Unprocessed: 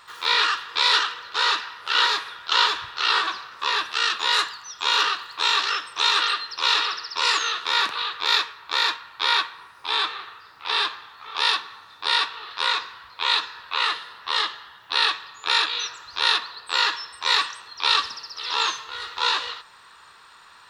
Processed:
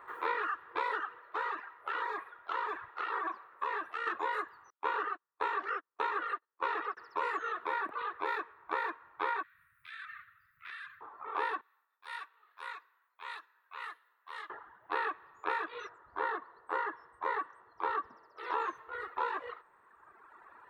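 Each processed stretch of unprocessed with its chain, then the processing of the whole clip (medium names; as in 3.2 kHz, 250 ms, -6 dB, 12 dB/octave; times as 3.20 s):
1.18–4.07 s: bass shelf 320 Hz -10 dB + band-stop 1.5 kHz, Q 24 + compression 4:1, threshold -23 dBFS
4.70–6.97 s: gate -28 dBFS, range -37 dB + treble shelf 7.5 kHz -9.5 dB
9.43–11.01 s: inverse Chebyshev band-stop 290–820 Hz, stop band 50 dB + treble shelf 9.2 kHz +10 dB + compression 10:1, threshold -26 dBFS
11.61–14.50 s: expander -45 dBFS + differentiator
15.89–18.38 s: treble shelf 3.1 kHz -11.5 dB + band-stop 2.5 kHz, Q 8
whole clip: FFT filter 190 Hz 0 dB, 340 Hz +14 dB, 2 kHz +2 dB, 2.9 kHz -13 dB, 5.1 kHz -27 dB, 13 kHz -7 dB; compression 6:1, threshold -22 dBFS; reverb removal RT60 1.9 s; trim -7 dB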